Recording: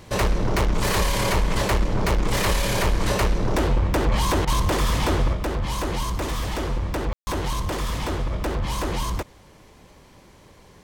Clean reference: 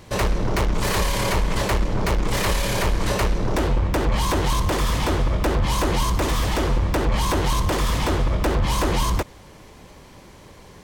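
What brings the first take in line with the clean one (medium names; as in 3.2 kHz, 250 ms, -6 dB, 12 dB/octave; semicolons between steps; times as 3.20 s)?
room tone fill 7.13–7.27 s; interpolate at 4.45 s, 23 ms; trim 0 dB, from 5.33 s +5 dB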